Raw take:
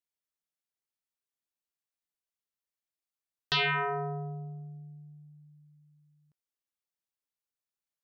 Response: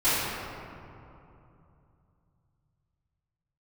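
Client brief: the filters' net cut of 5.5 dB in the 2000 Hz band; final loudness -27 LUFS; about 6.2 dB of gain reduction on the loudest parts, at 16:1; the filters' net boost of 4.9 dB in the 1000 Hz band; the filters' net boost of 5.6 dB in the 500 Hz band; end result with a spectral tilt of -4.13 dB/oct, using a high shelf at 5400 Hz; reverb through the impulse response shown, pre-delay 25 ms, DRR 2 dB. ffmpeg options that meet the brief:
-filter_complex "[0:a]equalizer=f=500:t=o:g=6.5,equalizer=f=1k:t=o:g=6.5,equalizer=f=2k:t=o:g=-9,highshelf=f=5.4k:g=-6,acompressor=threshold=-30dB:ratio=16,asplit=2[a][b];[1:a]atrim=start_sample=2205,adelay=25[c];[b][c]afir=irnorm=-1:irlink=0,volume=-18.5dB[d];[a][d]amix=inputs=2:normalize=0,volume=9.5dB"

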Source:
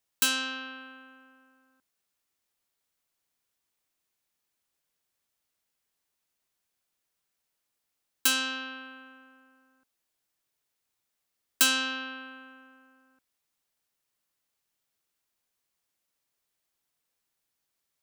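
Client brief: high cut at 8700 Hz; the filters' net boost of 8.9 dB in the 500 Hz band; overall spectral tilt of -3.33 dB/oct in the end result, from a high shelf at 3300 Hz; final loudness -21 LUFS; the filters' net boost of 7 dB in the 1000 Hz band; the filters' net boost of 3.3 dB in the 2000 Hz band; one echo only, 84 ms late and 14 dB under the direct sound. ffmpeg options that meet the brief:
-af "lowpass=8.7k,equalizer=f=500:t=o:g=7.5,equalizer=f=1k:t=o:g=7.5,equalizer=f=2k:t=o:g=3,highshelf=f=3.3k:g=-7,aecho=1:1:84:0.2,volume=7.5dB"

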